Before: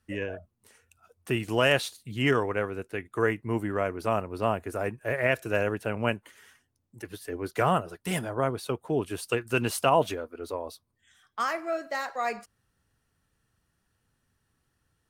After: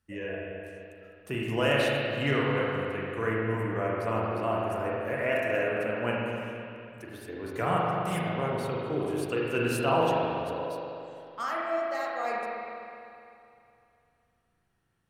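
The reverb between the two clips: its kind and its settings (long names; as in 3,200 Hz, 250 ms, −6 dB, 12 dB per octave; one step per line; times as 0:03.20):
spring reverb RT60 2.7 s, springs 36/42 ms, chirp 40 ms, DRR −4.5 dB
level −6.5 dB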